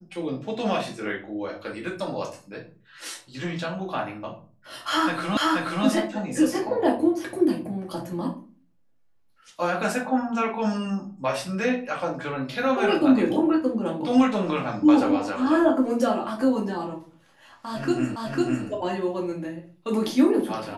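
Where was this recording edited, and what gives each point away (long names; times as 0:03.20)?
0:05.37: the same again, the last 0.48 s
0:18.16: the same again, the last 0.5 s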